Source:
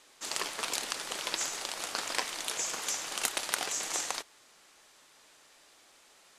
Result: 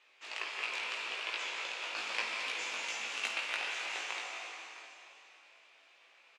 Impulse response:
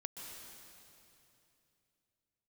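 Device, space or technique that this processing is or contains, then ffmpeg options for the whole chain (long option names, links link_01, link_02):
station announcement: -filter_complex "[0:a]highpass=460,lowpass=3600,equalizer=frequency=2500:width_type=o:width=0.56:gain=11.5,asplit=2[link_01][link_02];[link_02]adelay=18,volume=-3dB[link_03];[link_01][link_03]amix=inputs=2:normalize=0,aecho=1:1:52.48|256.6:0.316|0.251[link_04];[1:a]atrim=start_sample=2205[link_05];[link_04][link_05]afir=irnorm=-1:irlink=0,asettb=1/sr,asplit=3[link_06][link_07][link_08];[link_06]atrim=end=1.964[link_09];[link_07]atrim=start=1.96:end=3.37,asetpts=PTS-STARTPTS,afade=type=in:duration=0.004:curve=qsin,afade=type=out:start_time=1.406:duration=0.004:curve=qsin,bass=frequency=250:gain=12,treble=frequency=4000:gain=4[link_10];[link_08]atrim=start=3.366[link_11];[link_09][link_10]acrossfade=duration=0.004:curve1=hsin:curve2=qsin[link_12];[link_12][link_11]acrossfade=duration=0.004:curve1=qsin:curve2=hsin,aecho=1:1:658:0.158,volume=-4.5dB"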